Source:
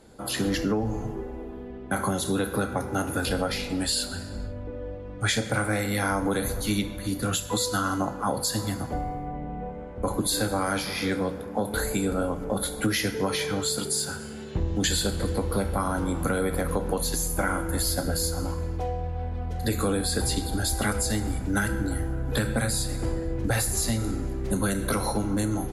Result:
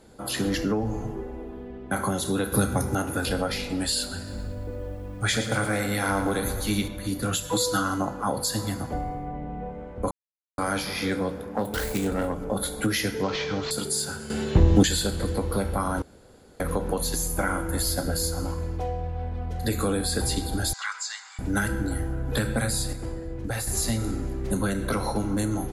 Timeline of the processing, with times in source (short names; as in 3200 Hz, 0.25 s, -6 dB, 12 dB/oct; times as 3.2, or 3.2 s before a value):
2.52–2.95 tone controls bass +8 dB, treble +12 dB
4.16–6.88 lo-fi delay 0.112 s, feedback 55%, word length 9-bit, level -9.5 dB
7.43–7.84 comb 6.3 ms
10.11–10.58 mute
11.48–12.34 self-modulated delay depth 0.19 ms
13.23–13.71 CVSD 32 kbps
14.3–14.83 gain +10 dB
16.02–16.6 room tone
20.73–21.39 Chebyshev band-pass 1000–7200 Hz, order 4
22.93–23.67 gain -5 dB
24.62–25.16 high shelf 7300 Hz -10 dB